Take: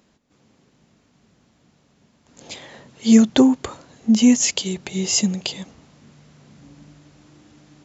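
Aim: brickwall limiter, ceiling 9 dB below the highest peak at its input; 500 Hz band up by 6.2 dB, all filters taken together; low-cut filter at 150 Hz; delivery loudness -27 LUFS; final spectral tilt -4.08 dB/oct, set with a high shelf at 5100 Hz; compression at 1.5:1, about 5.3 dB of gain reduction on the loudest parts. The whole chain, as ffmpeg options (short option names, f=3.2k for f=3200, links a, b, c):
-af "highpass=150,equalizer=f=500:t=o:g=7.5,highshelf=f=5.1k:g=-7.5,acompressor=threshold=-20dB:ratio=1.5,volume=-2dB,alimiter=limit=-15.5dB:level=0:latency=1"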